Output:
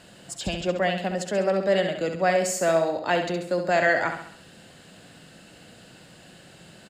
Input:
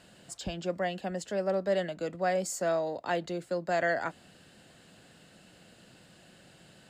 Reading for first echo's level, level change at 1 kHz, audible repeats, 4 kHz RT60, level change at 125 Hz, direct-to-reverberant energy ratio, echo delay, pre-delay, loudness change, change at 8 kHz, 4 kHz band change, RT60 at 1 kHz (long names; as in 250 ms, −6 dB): −7.0 dB, +7.5 dB, 5, no reverb audible, +7.0 dB, no reverb audible, 67 ms, no reverb audible, +7.5 dB, +7.5 dB, +9.5 dB, no reverb audible